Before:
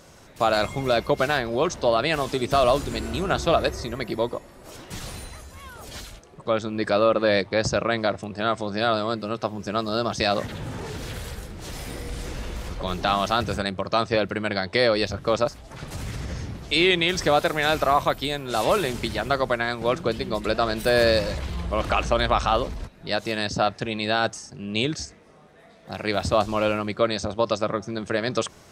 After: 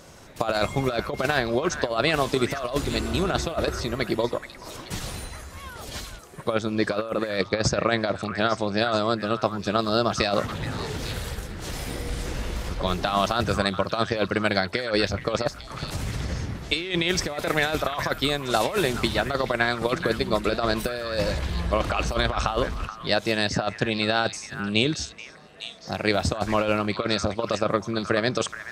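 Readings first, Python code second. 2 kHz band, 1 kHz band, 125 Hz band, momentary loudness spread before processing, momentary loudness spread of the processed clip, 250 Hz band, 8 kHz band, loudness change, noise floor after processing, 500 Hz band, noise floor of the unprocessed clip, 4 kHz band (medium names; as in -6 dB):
0.0 dB, -2.5 dB, +1.5 dB, 15 LU, 10 LU, +1.0 dB, +1.5 dB, -1.5 dB, -43 dBFS, -2.5 dB, -50 dBFS, 0.0 dB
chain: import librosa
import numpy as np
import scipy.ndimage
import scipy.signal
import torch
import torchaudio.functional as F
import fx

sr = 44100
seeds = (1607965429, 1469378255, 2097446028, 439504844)

y = fx.over_compress(x, sr, threshold_db=-23.0, ratio=-0.5)
y = fx.transient(y, sr, attack_db=3, sustain_db=-1)
y = fx.echo_stepped(y, sr, ms=427, hz=1500.0, octaves=1.4, feedback_pct=70, wet_db=-7.0)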